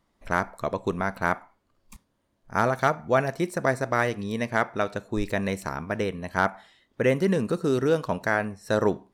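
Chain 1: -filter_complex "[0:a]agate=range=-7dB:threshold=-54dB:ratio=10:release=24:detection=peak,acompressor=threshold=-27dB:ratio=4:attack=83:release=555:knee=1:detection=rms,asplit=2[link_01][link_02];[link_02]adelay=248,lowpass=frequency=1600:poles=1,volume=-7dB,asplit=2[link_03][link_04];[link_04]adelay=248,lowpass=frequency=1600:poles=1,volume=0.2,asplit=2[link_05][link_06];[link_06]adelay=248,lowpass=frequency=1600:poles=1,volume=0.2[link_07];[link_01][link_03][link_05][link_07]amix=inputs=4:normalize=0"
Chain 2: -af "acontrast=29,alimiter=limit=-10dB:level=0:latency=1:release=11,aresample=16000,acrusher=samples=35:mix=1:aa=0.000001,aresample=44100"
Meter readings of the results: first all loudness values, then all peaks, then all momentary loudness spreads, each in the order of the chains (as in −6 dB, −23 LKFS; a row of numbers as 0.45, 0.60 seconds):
−30.5, −25.0 LKFS; −9.5, −8.5 dBFS; 4, 7 LU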